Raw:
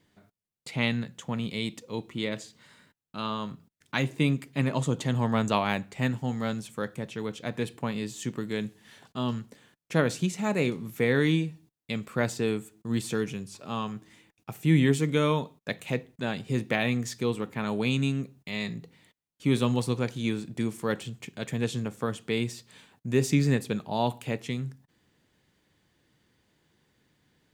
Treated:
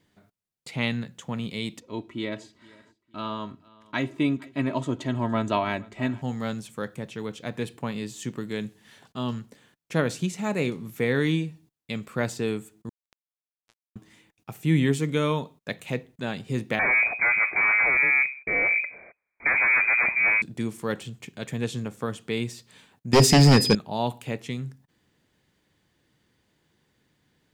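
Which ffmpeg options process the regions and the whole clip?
-filter_complex "[0:a]asettb=1/sr,asplit=3[s0][s1][s2];[s0]atrim=end=1.804[s3];[s1]atrim=start=1.8:end=6.22,asetpts=PTS-STARTPTS,afade=t=in:d=0.004:c=qsin,afade=t=out:st=4.416:d=0.004:c=qsin,lowpass=f=2600:p=1,aecho=1:1:3.1:0.63,atrim=end_sample=194922,aecho=1:1:464|928:0.0708|0.0241,atrim=end_sample=194922[s4];[s2]atrim=start=6.216[s5];[s3][s4]acrossfade=d=0.004:c1=hsin:c2=qsin[s6];[s6][s5]acrossfade=d=0.004:c1=qsin:c2=hsin,asettb=1/sr,asplit=3[s7][s8][s9];[s7]atrim=end=12.894[s10];[s8]atrim=start=12.89:end=13.96,asetpts=PTS-STARTPTS,afade=t=in:d=0.004:c=qsin,afade=t=out:st=1.066:d=0.004:c=qsin,highpass=f=220:p=1,acompressor=threshold=0.0178:ratio=20:attack=3.2:release=140:knee=1:detection=peak,acrusher=bits=3:mix=0:aa=0.5[s11];[s9]atrim=start=13.956[s12];[s10][s11]acrossfade=d=0.004:c1=hsin:c2=qsin[s13];[s13][s12]acrossfade=d=0.004:c1=qsin:c2=hsin,asettb=1/sr,asplit=3[s14][s15][s16];[s14]atrim=end=16.794[s17];[s15]atrim=start=16.79:end=20.42,asetpts=PTS-STARTPTS,afade=t=in:d=0.004:c=qsin,afade=t=out:st=3.626:d=0.004:c=qsin,aeval=exprs='0.282*sin(PI/2*4.47*val(0)/0.282)':c=same,aeval=exprs='(tanh(7.94*val(0)+0.5)-tanh(0.5))/7.94':c=same,lowpass=f=2100:t=q:w=0.5098,lowpass=f=2100:t=q:w=0.6013,lowpass=f=2100:t=q:w=0.9,lowpass=f=2100:t=q:w=2.563,afreqshift=-2500[s18];[s16]atrim=start=20.416[s19];[s17][s18]acrossfade=d=0.004:c1=hsin:c2=qsin[s20];[s20][s19]acrossfade=d=0.004:c1=qsin:c2=hsin,asettb=1/sr,asplit=3[s21][s22][s23];[s21]atrim=end=23.134[s24];[s22]atrim=start=23.13:end=23.75,asetpts=PTS-STARTPTS,afade=t=in:d=0.004:c=qsin,afade=t=out:st=0.616:d=0.004:c=qsin,aeval=exprs='val(0)+0.0141*sin(2*PI*5000*n/s)':c=same,aeval=exprs='0.299*sin(PI/2*2.82*val(0)/0.299)':c=same[s25];[s23]atrim=start=23.746[s26];[s24][s25]acrossfade=d=0.004:c1=hsin:c2=qsin[s27];[s27][s26]acrossfade=d=0.004:c1=qsin:c2=hsin"

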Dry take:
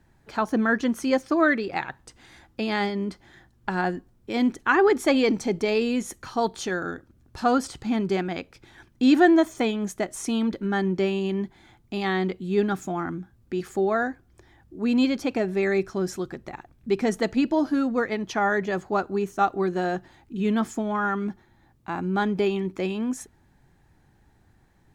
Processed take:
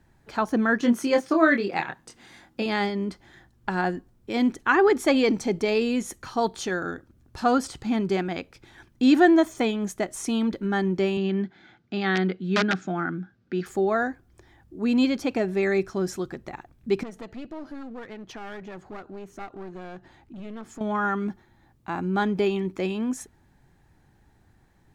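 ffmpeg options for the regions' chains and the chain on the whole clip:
-filter_complex "[0:a]asettb=1/sr,asplit=3[s0][s1][s2];[s0]atrim=end=0.794[s3];[s1]atrim=start=0.79:end=2.66,asetpts=PTS-STARTPTS,afade=t=in:d=0.004:c=qsin,afade=t=out:st=1.866:d=0.004:c=qsin,lowshelf=f=120:t=q:w=1.5:g=-8.5,asplit=2[s4][s5];[s5]adelay=25,volume=0.562[s6];[s4][s6]amix=inputs=2:normalize=0,atrim=end_sample=82467[s7];[s2]atrim=start=2.656[s8];[s3][s7]acrossfade=d=0.004:c1=hsin:c2=qsin[s9];[s9][s8]acrossfade=d=0.004:c1=qsin:c2=hsin,asettb=1/sr,asplit=3[s10][s11][s12];[s10]atrim=end=11.174[s13];[s11]atrim=start=11.17:end=13.66,asetpts=PTS-STARTPTS,afade=t=in:d=0.004:c=qsin,afade=t=out:st=2.486:d=0.004:c=qsin,aeval=exprs='(mod(6.31*val(0)+1,2)-1)/6.31':c=same,highpass=160,equalizer=f=180:t=q:w=4:g=5,equalizer=f=1000:t=q:w=4:g=-7,equalizer=f=1500:t=q:w=4:g=9,lowpass=f=5400:w=0.5412,lowpass=f=5400:w=1.3066[s14];[s12]atrim=start=13.656[s15];[s13][s14]acrossfade=d=0.004:c1=hsin:c2=qsin[s16];[s16][s15]acrossfade=d=0.004:c1=qsin:c2=hsin,asettb=1/sr,asplit=3[s17][s18][s19];[s17]atrim=end=17.034[s20];[s18]atrim=start=17.03:end=20.81,asetpts=PTS-STARTPTS,afade=t=in:d=0.004:c=qsin,afade=t=out:st=3.776:d=0.004:c=qsin,aeval=exprs='clip(val(0),-1,0.0251)':c=same,highshelf=f=5500:g=-7.5,acompressor=threshold=0.00708:ratio=2:attack=3.2:release=140:knee=1:detection=peak[s21];[s19]atrim=start=20.806[s22];[s20][s21]acrossfade=d=0.004:c1=hsin:c2=qsin[s23];[s23][s22]acrossfade=d=0.004:c1=qsin:c2=hsin"

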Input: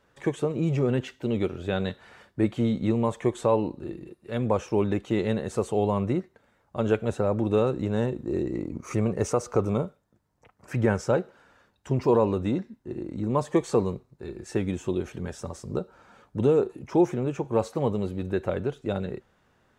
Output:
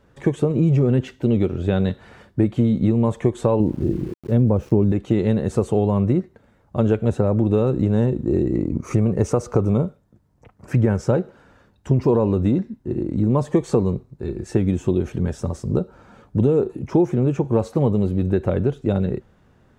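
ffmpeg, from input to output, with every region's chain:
-filter_complex "[0:a]asettb=1/sr,asplit=3[s0][s1][s2];[s0]atrim=end=3.604[s3];[s1]atrim=start=3.6:end=4.92,asetpts=PTS-STARTPTS,afade=t=in:d=0.004:c=qsin,afade=t=out:st=1.316:d=0.004:c=qsin,tiltshelf=f=720:g=7,aeval=exprs='val(0)*gte(abs(val(0)),0.00501)':c=same[s4];[s2]atrim=start=4.916[s5];[s3][s4]acrossfade=d=0.004:c1=hsin:c2=qsin[s6];[s6][s5]acrossfade=d=0.004:c1=qsin:c2=hsin,lowshelf=f=440:g=12,acompressor=threshold=0.158:ratio=4,volume=1.26"

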